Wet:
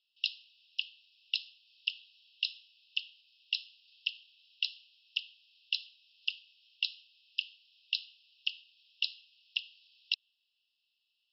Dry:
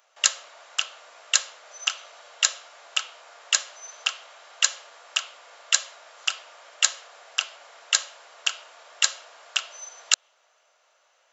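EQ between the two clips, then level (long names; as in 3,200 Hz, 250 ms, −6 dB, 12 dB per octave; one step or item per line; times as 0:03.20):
Chebyshev high-pass filter 2,600 Hz, order 10
linear-phase brick-wall low-pass 5,500 Hz
high-frequency loss of the air 100 metres
−5.5 dB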